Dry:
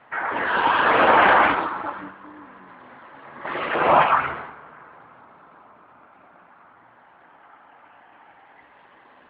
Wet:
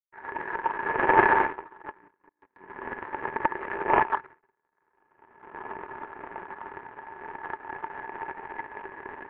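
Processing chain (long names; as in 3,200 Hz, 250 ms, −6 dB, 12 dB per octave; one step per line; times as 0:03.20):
camcorder AGC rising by 20 dB per second
power curve on the samples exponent 3
Butterworth low-pass 2,300 Hz 36 dB per octave
hollow resonant body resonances 390/900/1,700 Hz, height 15 dB, ringing for 45 ms
0:02.29–0:04.43: noise gate −50 dBFS, range −25 dB
level −1 dB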